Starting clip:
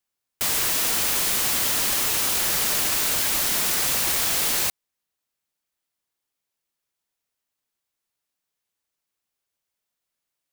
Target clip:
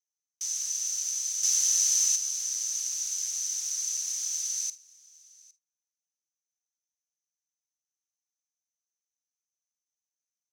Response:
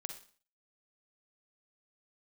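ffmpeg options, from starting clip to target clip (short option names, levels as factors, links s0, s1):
-filter_complex "[0:a]bandpass=f=6100:t=q:w=19:csg=0,aecho=1:1:810:0.0631,asplit=2[s0][s1];[1:a]atrim=start_sample=2205,atrim=end_sample=3969,asetrate=48510,aresample=44100[s2];[s1][s2]afir=irnorm=-1:irlink=0,volume=0.944[s3];[s0][s3]amix=inputs=2:normalize=0,asettb=1/sr,asplit=3[s4][s5][s6];[s4]atrim=end=1.434[s7];[s5]atrim=start=1.43:end=2.16,asetpts=PTS-STARTPTS,afade=t=in:d=0.004:c=qsin,afade=t=out:st=0.726:d=0.004:c=qsin,acontrast=89[s8];[s6]atrim=start=2.156[s9];[s7][s8]acrossfade=d=0.004:c1=hsin:c2=qsin[s10];[s10][s9]acrossfade=d=0.004:c1=qsin:c2=hsin,volume=1.58"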